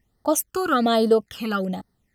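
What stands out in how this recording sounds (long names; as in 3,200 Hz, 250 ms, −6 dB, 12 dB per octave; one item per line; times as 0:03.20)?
phaser sweep stages 12, 1.2 Hz, lowest notch 570–2,500 Hz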